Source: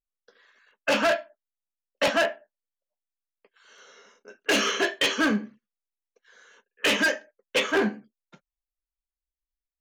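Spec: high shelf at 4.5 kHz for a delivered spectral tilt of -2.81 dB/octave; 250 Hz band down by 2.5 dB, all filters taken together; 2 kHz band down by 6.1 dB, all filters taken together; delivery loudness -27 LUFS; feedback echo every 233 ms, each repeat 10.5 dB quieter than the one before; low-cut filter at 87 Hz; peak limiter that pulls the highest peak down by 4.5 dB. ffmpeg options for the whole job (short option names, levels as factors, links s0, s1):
-af "highpass=87,equalizer=f=250:t=o:g=-3,equalizer=f=2000:t=o:g=-7.5,highshelf=f=4500:g=-3.5,alimiter=limit=0.0944:level=0:latency=1,aecho=1:1:233|466|699:0.299|0.0896|0.0269,volume=1.58"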